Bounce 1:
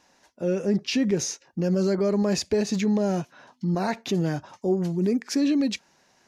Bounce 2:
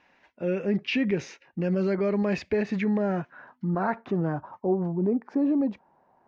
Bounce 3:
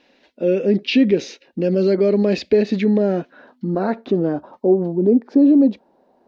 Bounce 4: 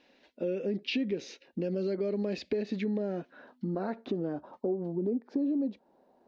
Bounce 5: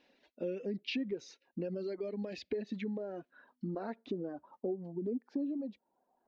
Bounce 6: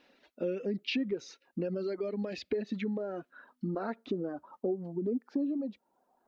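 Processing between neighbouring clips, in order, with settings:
low-pass sweep 2.4 kHz -> 900 Hz, 2.29–4.98 s; trim -2.5 dB
graphic EQ 125/250/500/1000/2000/4000 Hz -10/+9/+8/-7/-4/+12 dB; trim +3.5 dB
compression 3:1, threshold -24 dBFS, peak gain reduction 10.5 dB; trim -7 dB
reverb removal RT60 1.9 s; trim -4.5 dB
peaking EQ 1.3 kHz +7.5 dB 0.34 oct; trim +4 dB

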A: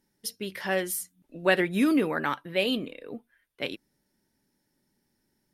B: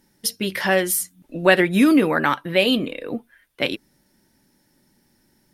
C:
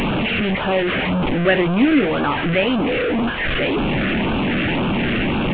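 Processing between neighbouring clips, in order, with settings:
band-stop 420 Hz, Q 12; in parallel at +0.5 dB: compression, threshold -33 dBFS, peak gain reduction 15 dB; on the sum: trim +6 dB
one-bit delta coder 16 kbps, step -12 dBFS; LFO notch sine 1.9 Hz 880–2000 Hz

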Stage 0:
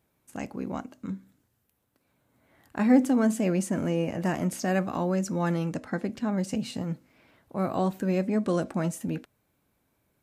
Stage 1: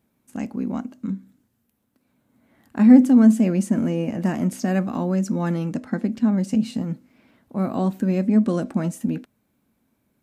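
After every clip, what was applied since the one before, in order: peaking EQ 230 Hz +12 dB 0.6 oct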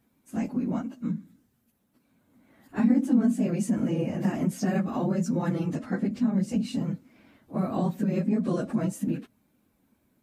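phase randomisation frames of 50 ms; compression 2:1, threshold -26 dBFS, peak gain reduction 10.5 dB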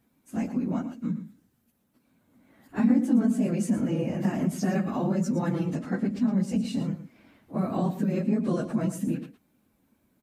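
delay 113 ms -12 dB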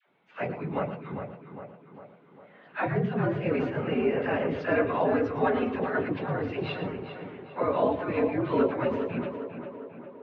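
phase dispersion lows, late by 82 ms, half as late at 700 Hz; mistuned SSB -94 Hz 400–3400 Hz; tape echo 403 ms, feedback 61%, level -7.5 dB, low-pass 2.5 kHz; trim +8.5 dB

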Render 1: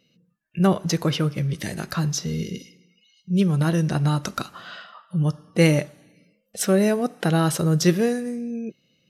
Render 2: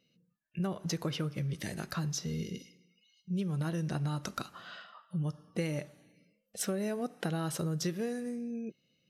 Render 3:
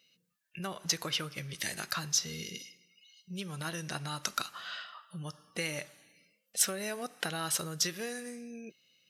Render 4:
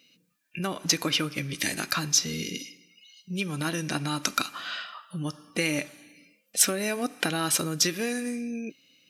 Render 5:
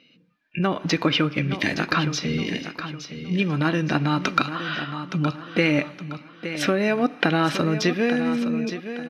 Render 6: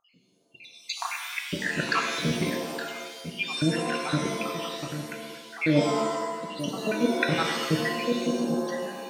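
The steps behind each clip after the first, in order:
compression 12:1, threshold -21 dBFS, peak gain reduction 10.5 dB; trim -8.5 dB
tilt shelf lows -9.5 dB, about 750 Hz
small resonant body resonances 280/2400 Hz, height 14 dB, ringing for 60 ms; trim +6.5 dB
distance through air 310 m; feedback delay 867 ms, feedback 35%, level -10.5 dB; trim +9 dB
random holes in the spectrogram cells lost 78%; pitch-shifted reverb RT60 1.1 s, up +7 st, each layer -2 dB, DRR 3 dB; trim -1.5 dB

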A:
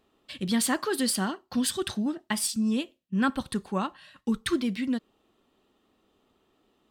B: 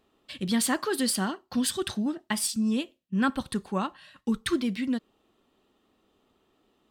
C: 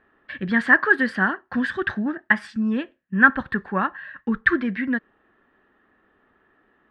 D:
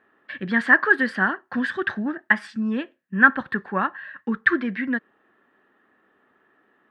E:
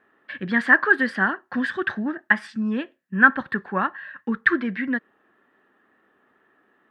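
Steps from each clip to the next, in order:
no audible change
resonant low-pass 1.7 kHz, resonance Q 9.7; trim +3 dB
Bessel high-pass 180 Hz, order 2
wow and flutter 26 cents

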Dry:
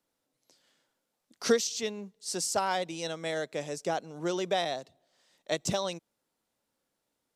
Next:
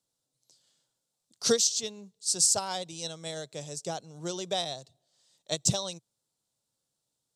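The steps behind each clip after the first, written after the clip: graphic EQ 125/250/2000/4000/8000 Hz +12/-4/-7/+7/+11 dB; upward expansion 1.5:1, over -33 dBFS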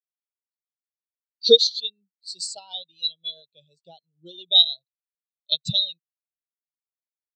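high-order bell 3.3 kHz +14.5 dB 1.1 oct; spectral contrast expander 2.5:1; trim +1.5 dB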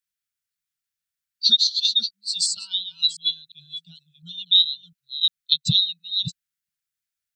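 chunks repeated in reverse 352 ms, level -10.5 dB; elliptic band-stop 180–1400 Hz, stop band 40 dB; compression 3:1, threshold -25 dBFS, peak gain reduction 11 dB; trim +9 dB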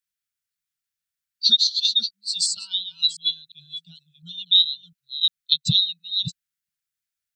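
no audible change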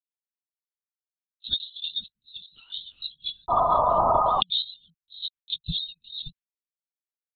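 painted sound noise, 3.49–4.41 s, 560–1300 Hz -13 dBFS; gate with hold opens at -44 dBFS; LPC vocoder at 8 kHz whisper; trim -8 dB

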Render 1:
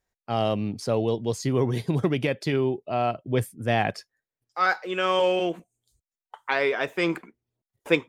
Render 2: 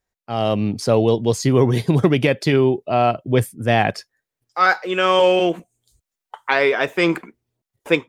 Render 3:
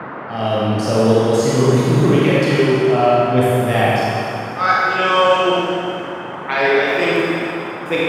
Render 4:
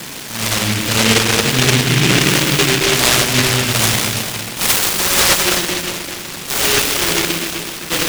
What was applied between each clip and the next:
level rider gain up to 9.5 dB
Schroeder reverb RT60 2.5 s, combs from 28 ms, DRR -7.5 dB; band noise 120–1500 Hz -25 dBFS; trim -5 dB
delay time shaken by noise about 2.5 kHz, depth 0.47 ms

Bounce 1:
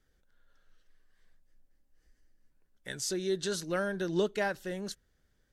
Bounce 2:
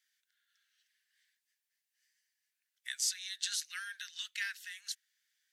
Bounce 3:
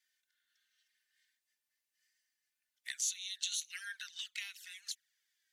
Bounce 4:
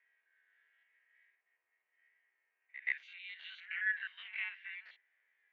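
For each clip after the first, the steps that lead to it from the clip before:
steep high-pass 1.8 kHz 36 dB/octave; trim +3 dB
touch-sensitive flanger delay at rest 3.4 ms, full sweep at -36.5 dBFS; trim +1.5 dB
spectrogram pixelated in time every 50 ms; mistuned SSB +100 Hz 280–2200 Hz; pre-echo 127 ms -14.5 dB; trim +12.5 dB

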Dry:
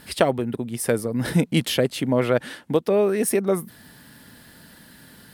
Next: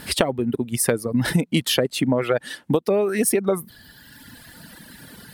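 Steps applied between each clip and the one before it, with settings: reverb removal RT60 1.6 s; compression 10:1, threshold -24 dBFS, peak gain reduction 12 dB; trim +8 dB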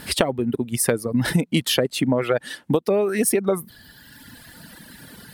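no audible change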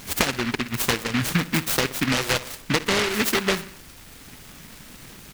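added noise pink -44 dBFS; feedback delay 62 ms, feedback 53%, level -16 dB; delay time shaken by noise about 1.8 kHz, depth 0.37 ms; trim -2.5 dB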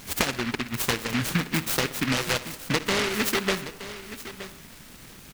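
delay 921 ms -14 dB; on a send at -19.5 dB: reverberation RT60 2.0 s, pre-delay 36 ms; on the sum: trim -3 dB

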